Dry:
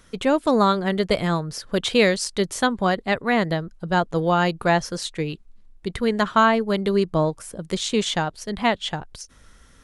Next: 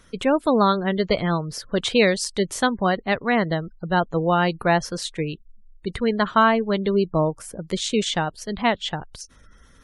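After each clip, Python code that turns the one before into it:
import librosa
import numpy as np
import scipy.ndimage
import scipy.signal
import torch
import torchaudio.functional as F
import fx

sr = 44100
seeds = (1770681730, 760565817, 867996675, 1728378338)

y = fx.spec_gate(x, sr, threshold_db=-30, keep='strong')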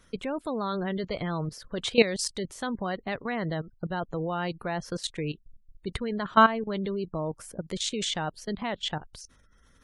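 y = fx.level_steps(x, sr, step_db=15)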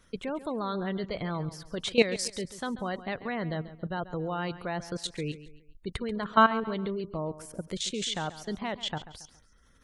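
y = fx.echo_feedback(x, sr, ms=138, feedback_pct=38, wet_db=-15.0)
y = y * librosa.db_to_amplitude(-2.0)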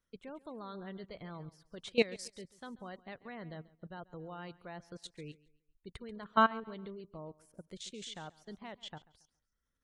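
y = fx.upward_expand(x, sr, threshold_db=-53.0, expansion=1.5)
y = y * librosa.db_to_amplitude(-5.5)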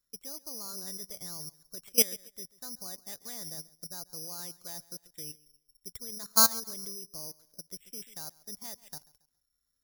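y = (np.kron(scipy.signal.resample_poly(x, 1, 8), np.eye(8)[0]) * 8)[:len(x)]
y = y * librosa.db_to_amplitude(-4.5)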